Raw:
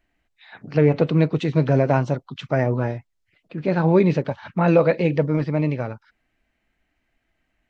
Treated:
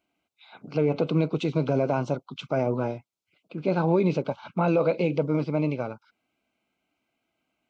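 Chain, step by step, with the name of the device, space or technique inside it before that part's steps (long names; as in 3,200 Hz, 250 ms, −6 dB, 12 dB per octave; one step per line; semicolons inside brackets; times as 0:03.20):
PA system with an anti-feedback notch (high-pass filter 170 Hz 12 dB per octave; Butterworth band-reject 1,800 Hz, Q 2.9; brickwall limiter −12 dBFS, peak gain reduction 6.5 dB)
level −2 dB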